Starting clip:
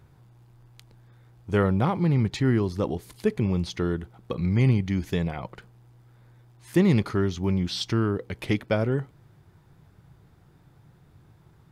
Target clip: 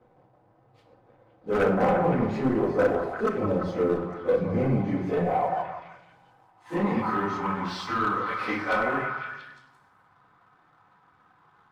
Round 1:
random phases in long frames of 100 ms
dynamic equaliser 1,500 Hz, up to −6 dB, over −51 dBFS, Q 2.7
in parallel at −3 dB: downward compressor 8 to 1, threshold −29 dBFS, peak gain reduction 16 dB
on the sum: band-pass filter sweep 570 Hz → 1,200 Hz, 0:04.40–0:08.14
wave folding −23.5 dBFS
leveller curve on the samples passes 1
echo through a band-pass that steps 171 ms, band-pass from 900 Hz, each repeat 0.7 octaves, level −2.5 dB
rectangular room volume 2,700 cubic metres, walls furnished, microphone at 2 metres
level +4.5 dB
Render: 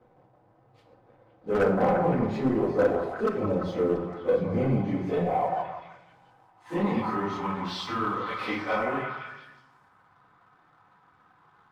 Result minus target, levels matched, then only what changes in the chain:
downward compressor: peak gain reduction +5 dB; 4,000 Hz band +3.0 dB
change: dynamic equaliser 3,400 Hz, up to −6 dB, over −51 dBFS, Q 2.7
change: downward compressor 8 to 1, threshold −23 dBFS, peak gain reduction 10.5 dB

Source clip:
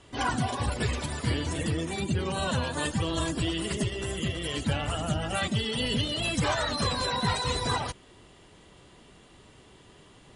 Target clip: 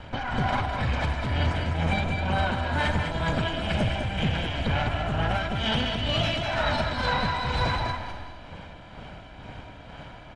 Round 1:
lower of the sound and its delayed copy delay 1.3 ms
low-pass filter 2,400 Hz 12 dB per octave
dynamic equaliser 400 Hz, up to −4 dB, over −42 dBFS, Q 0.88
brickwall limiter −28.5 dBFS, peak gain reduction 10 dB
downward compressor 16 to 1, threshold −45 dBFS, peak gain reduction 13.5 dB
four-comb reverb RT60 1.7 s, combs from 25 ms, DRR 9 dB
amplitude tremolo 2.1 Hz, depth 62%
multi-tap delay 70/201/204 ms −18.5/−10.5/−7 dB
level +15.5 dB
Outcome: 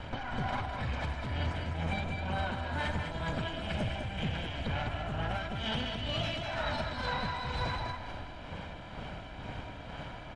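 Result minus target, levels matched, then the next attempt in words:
downward compressor: peak gain reduction +8.5 dB
lower of the sound and its delayed copy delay 1.3 ms
low-pass filter 2,400 Hz 12 dB per octave
dynamic equaliser 400 Hz, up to −4 dB, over −42 dBFS, Q 0.88
brickwall limiter −28.5 dBFS, peak gain reduction 10 dB
downward compressor 16 to 1, threshold −36 dBFS, peak gain reduction 5 dB
four-comb reverb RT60 1.7 s, combs from 25 ms, DRR 9 dB
amplitude tremolo 2.1 Hz, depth 62%
multi-tap delay 70/201/204 ms −18.5/−10.5/−7 dB
level +15.5 dB

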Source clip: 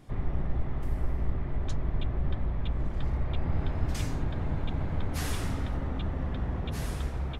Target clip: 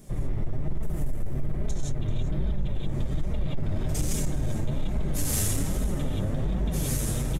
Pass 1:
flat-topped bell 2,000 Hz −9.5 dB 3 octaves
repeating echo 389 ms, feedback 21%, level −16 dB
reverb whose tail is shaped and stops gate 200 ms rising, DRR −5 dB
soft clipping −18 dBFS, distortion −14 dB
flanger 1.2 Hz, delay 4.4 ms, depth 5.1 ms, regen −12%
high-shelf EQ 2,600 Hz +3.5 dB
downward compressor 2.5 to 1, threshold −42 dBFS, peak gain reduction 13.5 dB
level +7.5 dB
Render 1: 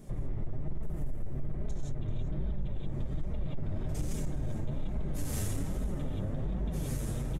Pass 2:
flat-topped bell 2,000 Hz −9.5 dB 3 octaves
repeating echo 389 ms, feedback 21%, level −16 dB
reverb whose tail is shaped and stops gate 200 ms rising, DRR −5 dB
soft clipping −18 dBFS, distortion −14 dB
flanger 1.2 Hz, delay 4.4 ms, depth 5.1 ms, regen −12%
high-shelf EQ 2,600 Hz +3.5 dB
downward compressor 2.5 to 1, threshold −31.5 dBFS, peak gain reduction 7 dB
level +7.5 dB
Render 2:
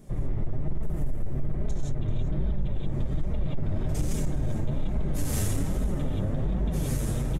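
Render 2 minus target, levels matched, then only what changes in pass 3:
4,000 Hz band −5.0 dB
change: high-shelf EQ 2,600 Hz +12 dB

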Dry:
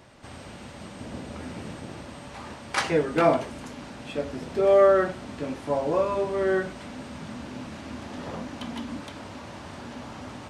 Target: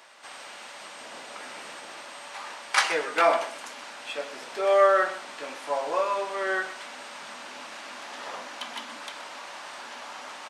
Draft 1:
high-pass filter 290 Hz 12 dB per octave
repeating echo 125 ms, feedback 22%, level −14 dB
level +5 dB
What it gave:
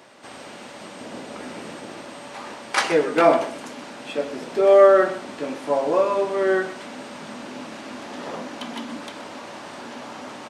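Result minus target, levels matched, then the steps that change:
250 Hz band +8.0 dB
change: high-pass filter 880 Hz 12 dB per octave

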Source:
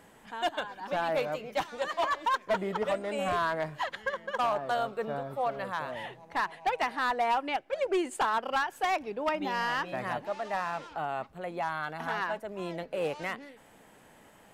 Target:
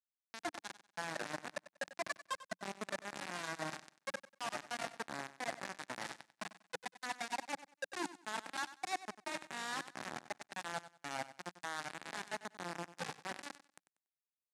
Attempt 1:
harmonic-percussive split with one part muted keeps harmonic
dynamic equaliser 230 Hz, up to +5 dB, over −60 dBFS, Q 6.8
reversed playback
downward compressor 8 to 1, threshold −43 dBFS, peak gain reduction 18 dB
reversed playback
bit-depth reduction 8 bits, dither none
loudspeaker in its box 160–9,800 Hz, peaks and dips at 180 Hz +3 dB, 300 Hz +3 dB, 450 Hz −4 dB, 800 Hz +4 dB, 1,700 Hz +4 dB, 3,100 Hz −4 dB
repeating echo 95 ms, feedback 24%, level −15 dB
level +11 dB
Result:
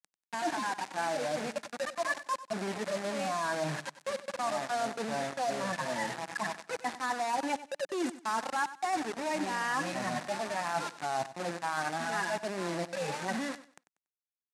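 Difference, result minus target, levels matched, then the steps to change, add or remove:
downward compressor: peak gain reduction −9 dB
change: downward compressor 8 to 1, threshold −53 dBFS, peak gain reduction 26.5 dB

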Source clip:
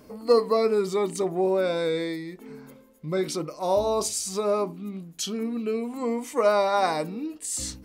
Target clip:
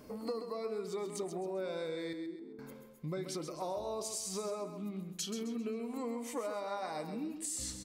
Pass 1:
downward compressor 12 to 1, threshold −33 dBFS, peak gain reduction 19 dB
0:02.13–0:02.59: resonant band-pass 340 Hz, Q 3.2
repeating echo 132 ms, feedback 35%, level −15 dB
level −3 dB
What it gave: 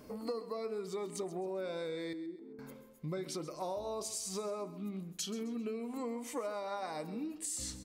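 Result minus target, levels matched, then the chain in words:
echo-to-direct −6.5 dB
downward compressor 12 to 1, threshold −33 dBFS, peak gain reduction 19 dB
0:02.13–0:02.59: resonant band-pass 340 Hz, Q 3.2
repeating echo 132 ms, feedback 35%, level −8.5 dB
level −3 dB

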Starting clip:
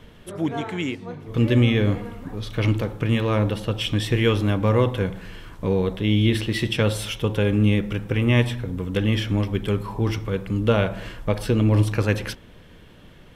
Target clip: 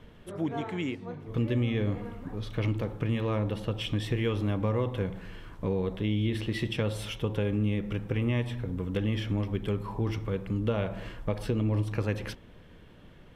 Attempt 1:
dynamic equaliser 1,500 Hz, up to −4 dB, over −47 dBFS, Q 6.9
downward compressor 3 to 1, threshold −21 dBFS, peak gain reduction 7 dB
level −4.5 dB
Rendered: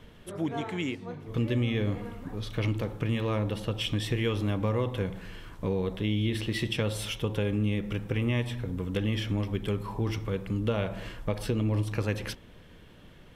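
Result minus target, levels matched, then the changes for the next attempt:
8,000 Hz band +6.0 dB
add after downward compressor: high-shelf EQ 3,100 Hz −7 dB

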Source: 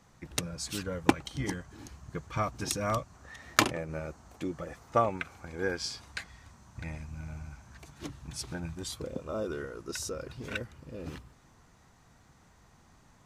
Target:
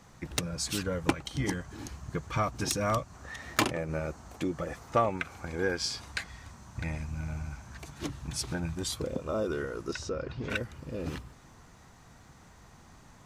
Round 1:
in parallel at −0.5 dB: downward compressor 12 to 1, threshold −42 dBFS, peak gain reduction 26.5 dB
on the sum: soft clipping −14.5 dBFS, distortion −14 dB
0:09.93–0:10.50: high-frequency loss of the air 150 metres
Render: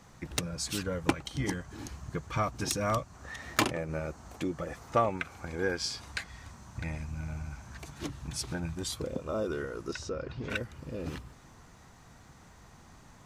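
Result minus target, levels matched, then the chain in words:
downward compressor: peak gain reduction +5.5 dB
in parallel at −0.5 dB: downward compressor 12 to 1, threshold −36 dBFS, peak gain reduction 21 dB
on the sum: soft clipping −14.5 dBFS, distortion −14 dB
0:09.93–0:10.50: high-frequency loss of the air 150 metres

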